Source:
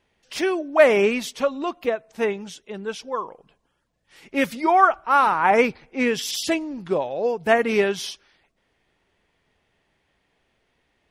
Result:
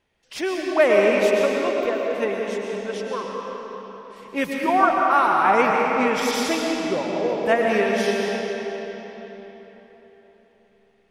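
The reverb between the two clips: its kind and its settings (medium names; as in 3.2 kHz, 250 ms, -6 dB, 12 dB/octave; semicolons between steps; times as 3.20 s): algorithmic reverb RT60 4.2 s, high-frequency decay 0.75×, pre-delay 80 ms, DRR -1.5 dB; trim -3 dB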